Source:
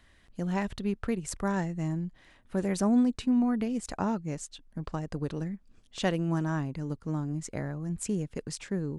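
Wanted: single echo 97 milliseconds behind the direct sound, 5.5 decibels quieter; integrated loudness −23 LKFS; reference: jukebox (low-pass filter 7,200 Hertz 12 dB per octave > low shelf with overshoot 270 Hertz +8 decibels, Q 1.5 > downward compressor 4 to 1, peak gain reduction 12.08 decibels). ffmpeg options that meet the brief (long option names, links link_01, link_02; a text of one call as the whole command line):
ffmpeg -i in.wav -af "lowpass=7200,lowshelf=frequency=270:width_type=q:width=1.5:gain=8,aecho=1:1:97:0.531,acompressor=threshold=-26dB:ratio=4,volume=7dB" out.wav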